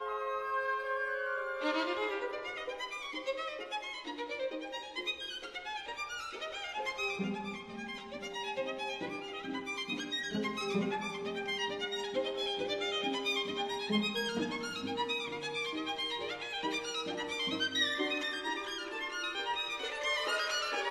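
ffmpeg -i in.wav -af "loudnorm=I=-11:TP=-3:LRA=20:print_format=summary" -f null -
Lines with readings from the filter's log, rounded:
Input Integrated:    -35.5 LUFS
Input True Peak:     -17.7 dBTP
Input LRA:             4.3 LU
Input Threshold:     -45.5 LUFS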